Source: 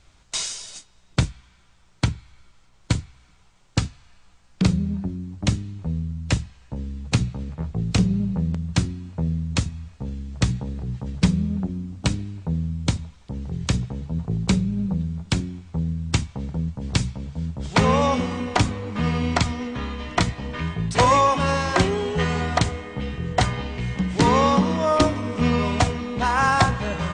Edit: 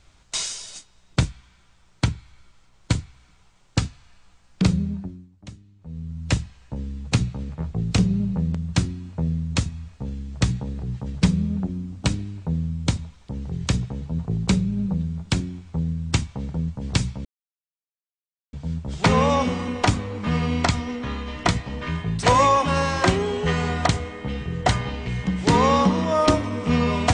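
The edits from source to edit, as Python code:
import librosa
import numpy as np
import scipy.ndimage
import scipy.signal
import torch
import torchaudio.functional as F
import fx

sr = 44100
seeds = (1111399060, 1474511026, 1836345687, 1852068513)

y = fx.edit(x, sr, fx.fade_down_up(start_s=4.8, length_s=1.49, db=-19.0, fade_s=0.49),
    fx.insert_silence(at_s=17.25, length_s=1.28), tone=tone)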